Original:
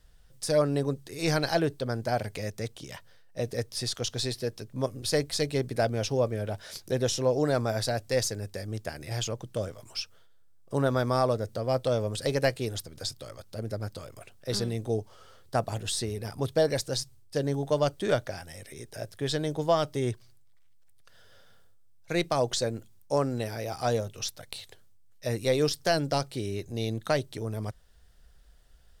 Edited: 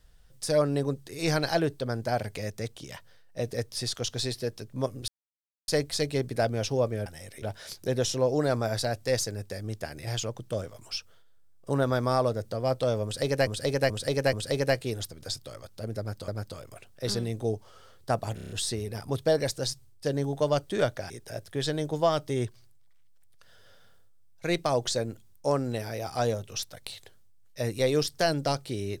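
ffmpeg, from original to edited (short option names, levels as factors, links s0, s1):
-filter_complex "[0:a]asplit=14[s0][s1][s2][s3][s4][s5][s6][s7][s8][s9][s10][s11][s12][s13];[s0]atrim=end=5.08,asetpts=PTS-STARTPTS,afade=t=out:st=5.076:d=0.004:c=hsin,apad=pad_dur=0.6[s14];[s1]atrim=start=5.08:end=6.462,asetpts=PTS-STARTPTS,afade=t=in:d=0.004:c=hsin[s15];[s2]atrim=start=18.398:end=18.762[s16];[s3]atrim=start=6.458:end=12.512[s17];[s4]atrim=start=12.078:end=12.512[s18];[s5]atrim=start=12.078:end=12.512[s19];[s6]atrim=start=12.078:end=14.032[s20];[s7]atrim=start=13.728:end=15.832[s21];[s8]atrim=start=15.798:end=15.832[s22];[s9]atrim=start=15.798:end=15.832[s23];[s10]atrim=start=15.798:end=15.832[s24];[s11]atrim=start=15.798:end=15.832[s25];[s12]atrim=start=15.798:end=18.402[s26];[s13]atrim=start=18.758[s27];[s14][s15]concat=n=2:v=0:a=1[s28];[s28][s16]acrossfade=d=0.004:c1=hsin:c2=hsin[s29];[s29][s17]acrossfade=d=0.004:c1=hsin:c2=hsin[s30];[s30][s18]acrossfade=d=0.004:c1=hsin:c2=hsin[s31];[s31][s19]acrossfade=d=0.004:c1=hsin:c2=hsin[s32];[s32][s20]acrossfade=d=0.004:c1=hsin:c2=hsin[s33];[s33][s21]acrossfade=d=0.004:c1=hsin:c2=hsin[s34];[s34][s22]acrossfade=d=0.004:c1=hsin:c2=hsin[s35];[s35][s23]acrossfade=d=0.004:c1=hsin:c2=hsin[s36];[s36][s24]acrossfade=d=0.004:c1=hsin:c2=hsin[s37];[s37][s25]acrossfade=d=0.004:c1=hsin:c2=hsin[s38];[s38][s26]acrossfade=d=0.004:c1=hsin:c2=hsin[s39];[s39][s27]acrossfade=d=0.004:c1=hsin:c2=hsin"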